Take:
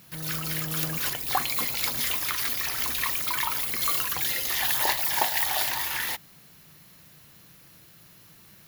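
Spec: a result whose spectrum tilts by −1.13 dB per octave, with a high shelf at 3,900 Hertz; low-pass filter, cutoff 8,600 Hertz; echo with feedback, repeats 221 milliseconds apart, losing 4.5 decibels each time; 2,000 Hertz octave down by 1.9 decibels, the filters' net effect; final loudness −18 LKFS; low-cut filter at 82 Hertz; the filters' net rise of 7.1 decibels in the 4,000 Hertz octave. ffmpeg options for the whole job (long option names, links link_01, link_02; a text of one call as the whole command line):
ffmpeg -i in.wav -af "highpass=82,lowpass=8600,equalizer=frequency=2000:width_type=o:gain=-5.5,highshelf=frequency=3900:gain=5.5,equalizer=frequency=4000:width_type=o:gain=7,aecho=1:1:221|442|663|884|1105|1326|1547|1768|1989:0.596|0.357|0.214|0.129|0.0772|0.0463|0.0278|0.0167|0.01,volume=5.5dB" out.wav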